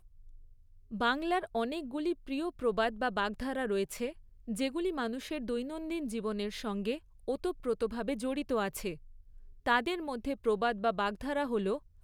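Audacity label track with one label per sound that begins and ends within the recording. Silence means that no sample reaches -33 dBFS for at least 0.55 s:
0.940000	8.930000	sound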